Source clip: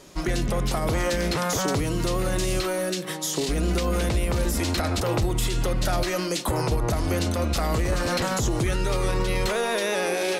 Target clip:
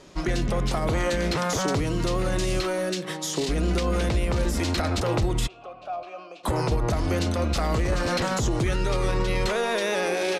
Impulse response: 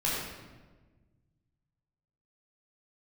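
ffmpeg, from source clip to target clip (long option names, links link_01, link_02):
-filter_complex "[0:a]asettb=1/sr,asplit=3[link_01][link_02][link_03];[link_01]atrim=end=0.854[link_04];[link_02]atrim=start=0.85:end=1.26,asetpts=PTS-STARTPTS,afade=type=in:duration=0.004:curve=qsin,afade=type=out:start_time=0.406:duration=0.004:curve=qsin,bandreject=frequency=5200:width=7.2[link_05];[link_03]atrim=start=1.256[link_06];[link_04][link_05]acrossfade=duration=0.004:curve1=hsin:curve2=qsin[link_07];[link_07][link_06]acrossfade=duration=0.004:curve1=qsin:curve2=hsin,asplit=3[link_08][link_09][link_10];[link_08]afade=type=out:start_time=5.46:duration=0.02[link_11];[link_09]asplit=3[link_12][link_13][link_14];[link_12]bandpass=frequency=730:width_type=q:width=8,volume=0dB[link_15];[link_13]bandpass=frequency=1090:width_type=q:width=8,volume=-6dB[link_16];[link_14]bandpass=frequency=2440:width_type=q:width=8,volume=-9dB[link_17];[link_15][link_16][link_17]amix=inputs=3:normalize=0,afade=type=in:start_time=5.46:duration=0.02,afade=type=out:start_time=6.43:duration=0.02[link_18];[link_10]afade=type=in:start_time=6.43:duration=0.02[link_19];[link_11][link_18][link_19]amix=inputs=3:normalize=0,adynamicsmooth=sensitivity=4:basefreq=7000,aresample=32000,aresample=44100"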